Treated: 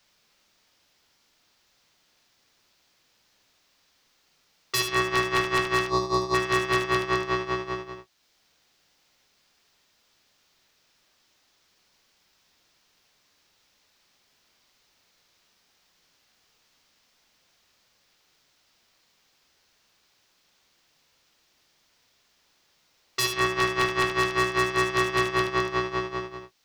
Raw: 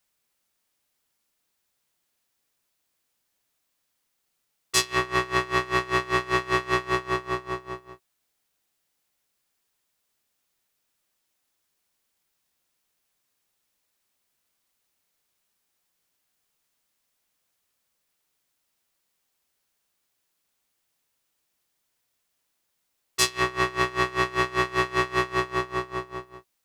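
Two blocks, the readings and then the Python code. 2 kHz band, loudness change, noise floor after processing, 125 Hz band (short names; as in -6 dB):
+0.5 dB, +0.5 dB, -68 dBFS, +1.0 dB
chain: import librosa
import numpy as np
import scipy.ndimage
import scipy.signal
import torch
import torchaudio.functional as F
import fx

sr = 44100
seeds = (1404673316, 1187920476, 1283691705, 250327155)

y = fx.spec_box(x, sr, start_s=5.86, length_s=0.49, low_hz=1200.0, high_hz=3500.0, gain_db=-20)
y = fx.high_shelf_res(y, sr, hz=7100.0, db=-10.5, q=1.5)
y = 10.0 ** (-12.5 / 20.0) * (np.abs((y / 10.0 ** (-12.5 / 20.0) + 3.0) % 4.0 - 2.0) - 1.0)
y = fx.room_early_taps(y, sr, ms=(48, 75), db=(-13.0, -8.0))
y = fx.band_squash(y, sr, depth_pct=40)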